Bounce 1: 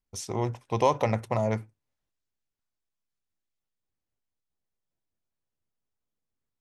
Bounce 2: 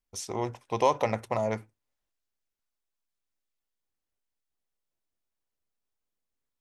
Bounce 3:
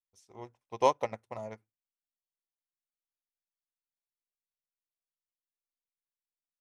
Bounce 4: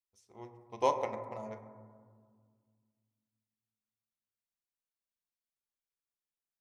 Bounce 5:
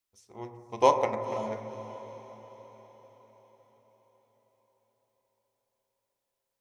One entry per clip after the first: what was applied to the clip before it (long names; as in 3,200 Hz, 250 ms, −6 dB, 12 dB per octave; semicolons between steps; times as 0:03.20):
parametric band 120 Hz −7.5 dB 1.9 octaves
expander for the loud parts 2.5 to 1, over −37 dBFS
convolution reverb RT60 1.9 s, pre-delay 7 ms, DRR 5.5 dB; level −4.5 dB
feedback delay with all-pass diffusion 506 ms, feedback 51%, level −14 dB; level +7.5 dB